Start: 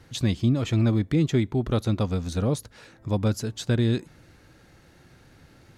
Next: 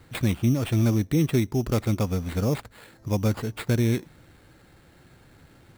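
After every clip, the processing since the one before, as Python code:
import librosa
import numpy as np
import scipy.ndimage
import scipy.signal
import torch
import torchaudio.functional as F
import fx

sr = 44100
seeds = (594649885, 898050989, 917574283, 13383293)

y = fx.sample_hold(x, sr, seeds[0], rate_hz=5900.0, jitter_pct=0)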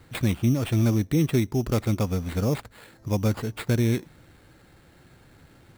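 y = x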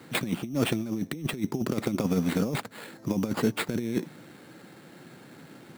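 y = scipy.signal.sosfilt(scipy.signal.butter(4, 180.0, 'highpass', fs=sr, output='sos'), x)
y = fx.low_shelf(y, sr, hz=230.0, db=9.0)
y = fx.over_compress(y, sr, threshold_db=-26.0, ratio=-0.5)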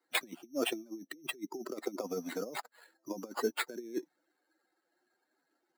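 y = fx.bin_expand(x, sr, power=2.0)
y = scipy.signal.sosfilt(scipy.signal.butter(4, 320.0, 'highpass', fs=sr, output='sos'), y)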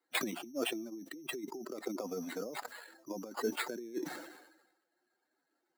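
y = fx.sustainer(x, sr, db_per_s=56.0)
y = y * librosa.db_to_amplitude(-3.0)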